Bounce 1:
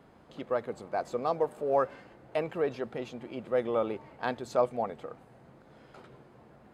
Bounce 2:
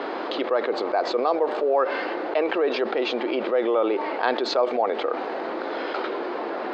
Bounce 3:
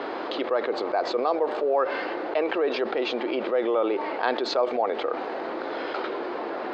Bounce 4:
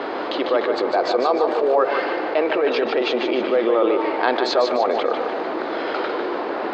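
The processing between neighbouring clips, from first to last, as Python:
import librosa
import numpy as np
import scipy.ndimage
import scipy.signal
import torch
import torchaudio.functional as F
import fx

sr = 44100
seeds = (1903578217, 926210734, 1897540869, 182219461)

y1 = scipy.signal.sosfilt(scipy.signal.ellip(3, 1.0, 40, [320.0, 4500.0], 'bandpass', fs=sr, output='sos'), x)
y1 = fx.env_flatten(y1, sr, amount_pct=70)
y1 = y1 * 10.0 ** (3.5 / 20.0)
y2 = fx.dmg_noise_band(y1, sr, seeds[0], low_hz=76.0, high_hz=350.0, level_db=-62.0)
y2 = y2 * 10.0 ** (-2.0 / 20.0)
y3 = fx.echo_feedback(y2, sr, ms=149, feedback_pct=46, wet_db=-6.0)
y3 = y3 * 10.0 ** (5.0 / 20.0)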